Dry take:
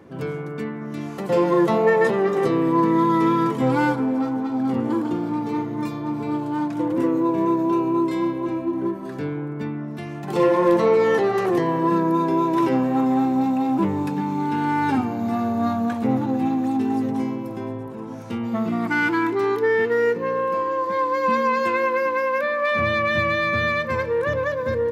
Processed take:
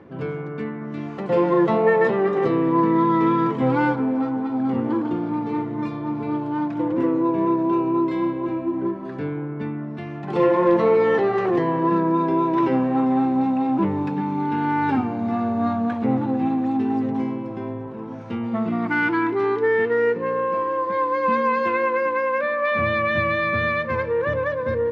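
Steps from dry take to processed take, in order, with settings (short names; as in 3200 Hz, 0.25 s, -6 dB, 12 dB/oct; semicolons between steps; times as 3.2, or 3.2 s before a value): reverse; upward compressor, threshold -32 dBFS; reverse; LPF 3100 Hz 12 dB/oct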